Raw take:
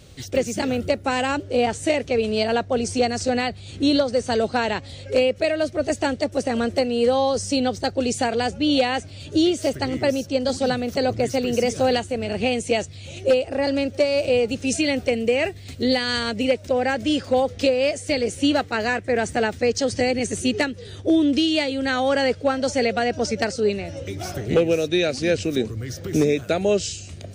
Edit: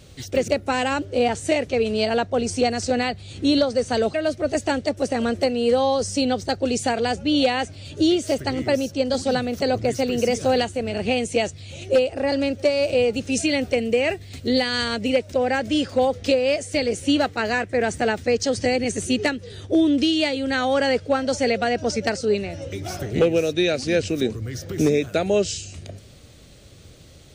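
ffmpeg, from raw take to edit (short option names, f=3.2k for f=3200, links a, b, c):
-filter_complex "[0:a]asplit=3[a][b][c];[a]atrim=end=0.482[d];[b]atrim=start=0.858:end=4.522[e];[c]atrim=start=5.488[f];[d][e]acrossfade=d=0.004:c1=hsin:c2=hsin[g];[g][f]acrossfade=d=0.004:c1=hsin:c2=hsin"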